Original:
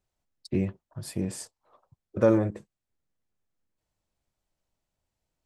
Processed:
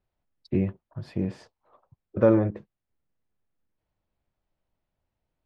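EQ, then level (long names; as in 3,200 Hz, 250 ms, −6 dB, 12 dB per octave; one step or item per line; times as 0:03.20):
high-frequency loss of the air 280 metres
+2.5 dB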